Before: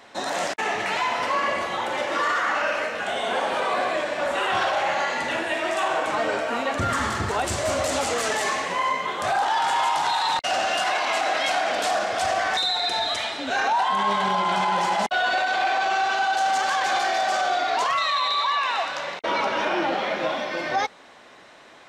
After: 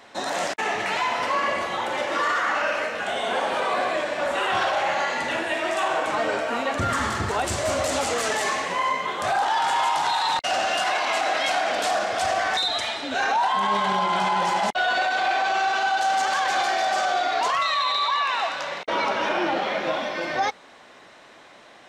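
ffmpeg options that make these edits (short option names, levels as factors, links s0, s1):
-filter_complex "[0:a]asplit=2[s0][s1];[s0]atrim=end=12.682[s2];[s1]atrim=start=13.038[s3];[s2][s3]acrossfade=d=0.004:c1=hsin:c2=hsin"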